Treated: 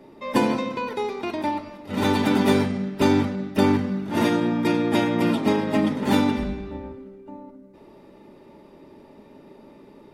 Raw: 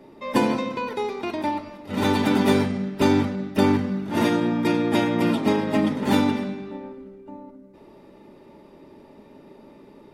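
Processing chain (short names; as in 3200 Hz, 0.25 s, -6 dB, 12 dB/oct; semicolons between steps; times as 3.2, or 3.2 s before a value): 6.36–6.96 octaver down 2 oct, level -2 dB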